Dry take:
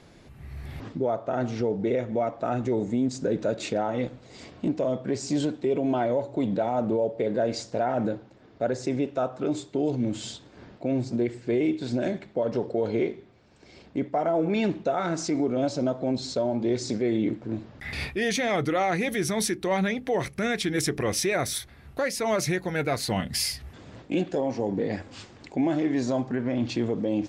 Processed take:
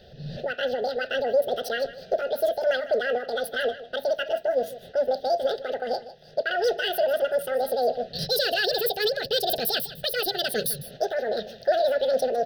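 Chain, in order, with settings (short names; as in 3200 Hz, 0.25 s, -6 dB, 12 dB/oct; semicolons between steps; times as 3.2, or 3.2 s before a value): Wiener smoothing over 9 samples; fixed phaser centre 680 Hz, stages 8; wide varispeed 2.19×; Butterworth band-stop 1100 Hz, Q 0.9; on a send: echo 0.153 s -15.5 dB; on the sum: gain +7.5 dB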